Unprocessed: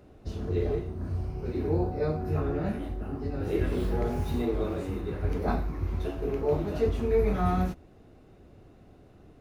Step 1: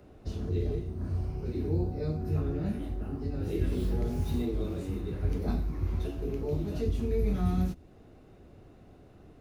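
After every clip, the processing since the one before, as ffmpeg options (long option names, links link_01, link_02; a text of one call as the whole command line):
ffmpeg -i in.wav -filter_complex "[0:a]acrossover=split=350|3000[link_01][link_02][link_03];[link_02]acompressor=threshold=-49dB:ratio=2.5[link_04];[link_01][link_04][link_03]amix=inputs=3:normalize=0" out.wav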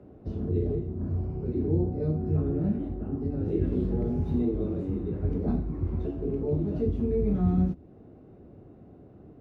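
ffmpeg -i in.wav -af "bandpass=frequency=230:width_type=q:width=0.55:csg=0,volume=6dB" out.wav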